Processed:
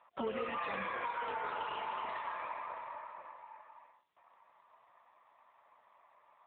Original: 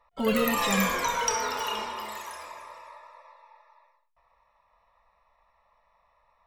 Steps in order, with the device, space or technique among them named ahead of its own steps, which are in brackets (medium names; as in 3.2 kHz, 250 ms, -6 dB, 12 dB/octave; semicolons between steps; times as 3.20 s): voicemail (band-pass 370–2800 Hz; compression 10:1, threshold -37 dBFS, peak gain reduction 14.5 dB; trim +3.5 dB; AMR-NB 7.95 kbps 8 kHz)